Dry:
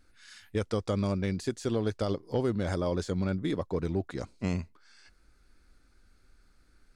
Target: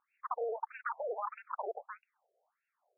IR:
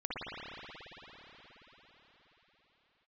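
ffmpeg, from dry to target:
-af "asetrate=103194,aresample=44100,afftfilt=real='re*between(b*sr/1024,510*pow(2000/510,0.5+0.5*sin(2*PI*1.6*pts/sr))/1.41,510*pow(2000/510,0.5+0.5*sin(2*PI*1.6*pts/sr))*1.41)':imag='im*between(b*sr/1024,510*pow(2000/510,0.5+0.5*sin(2*PI*1.6*pts/sr))/1.41,510*pow(2000/510,0.5+0.5*sin(2*PI*1.6*pts/sr))*1.41)':win_size=1024:overlap=0.75,volume=0.75"

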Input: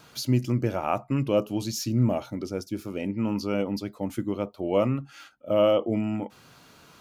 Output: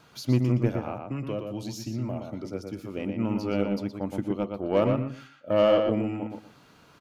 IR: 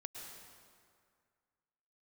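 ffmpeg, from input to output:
-filter_complex "[0:a]highshelf=f=4600:g=-7,asettb=1/sr,asplit=3[s0][s1][s2];[s0]atrim=end=0.724[s3];[s1]atrim=start=0.72:end=2.79,asetpts=PTS-STARTPTS,afade=t=in:d=0.004:c=qsin,afade=t=out:st=2.066:d=0.004:c=qsin,acrossover=split=140|510[s4][s5][s6];[s4]acompressor=threshold=0.02:ratio=4[s7];[s5]acompressor=threshold=0.0224:ratio=4[s8];[s6]acompressor=threshold=0.0158:ratio=4[s9];[s7][s8][s9]amix=inputs=3:normalize=0[s10];[s2]atrim=start=2.786[s11];[s3][s10]acrossfade=d=0.004:c1=hsin:c2=qsin[s12];[s12][s11]acrossfade=d=0.004:c1=qsin:c2=hsin,aeval=exprs='0.316*(cos(1*acos(clip(val(0)/0.316,-1,1)))-cos(1*PI/2))+0.0126*(cos(7*acos(clip(val(0)/0.316,-1,1)))-cos(7*PI/2))':c=same,asplit=2[s13][s14];[s14]adelay=119,lowpass=f=3700:p=1,volume=0.596,asplit=2[s15][s16];[s16]adelay=119,lowpass=f=3700:p=1,volume=0.21,asplit=2[s17][s18];[s18]adelay=119,lowpass=f=3700:p=1,volume=0.21[s19];[s13][s15][s17][s19]amix=inputs=4:normalize=0"

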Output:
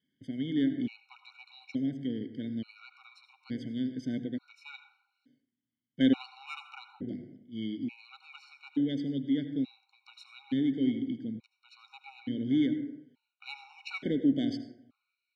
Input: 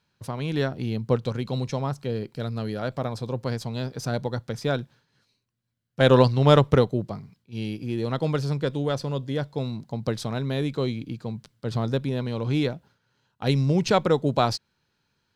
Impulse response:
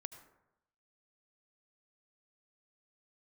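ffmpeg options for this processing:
-filter_complex "[0:a]asplit=3[s0][s1][s2];[s0]bandpass=f=270:t=q:w=8,volume=1[s3];[s1]bandpass=f=2290:t=q:w=8,volume=0.501[s4];[s2]bandpass=f=3010:t=q:w=8,volume=0.355[s5];[s3][s4][s5]amix=inputs=3:normalize=0,highshelf=f=6100:g=-2,asplit=2[s6][s7];[s7]asoftclip=type=tanh:threshold=0.0237,volume=0.501[s8];[s6][s8]amix=inputs=2:normalize=0[s9];[1:a]atrim=start_sample=2205[s10];[s9][s10]afir=irnorm=-1:irlink=0,afftfilt=real='re*gt(sin(2*PI*0.57*pts/sr)*(1-2*mod(floor(b*sr/1024/740),2)),0)':imag='im*gt(sin(2*PI*0.57*pts/sr)*(1-2*mod(floor(b*sr/1024/740),2)),0)':win_size=1024:overlap=0.75,volume=2.66"

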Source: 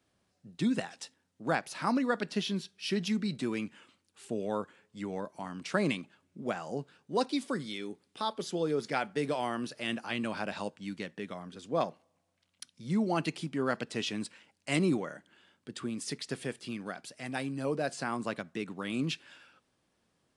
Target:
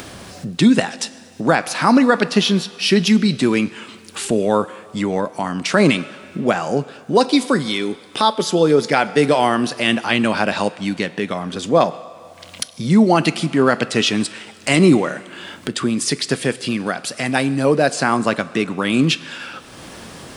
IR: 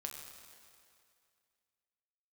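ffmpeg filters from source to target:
-filter_complex "[0:a]acompressor=mode=upward:threshold=0.0178:ratio=2.5,asplit=2[s0][s1];[s1]lowshelf=f=220:g=-10[s2];[1:a]atrim=start_sample=2205[s3];[s2][s3]afir=irnorm=-1:irlink=0,volume=0.398[s4];[s0][s4]amix=inputs=2:normalize=0,alimiter=level_in=6.68:limit=0.891:release=50:level=0:latency=1,volume=0.891"

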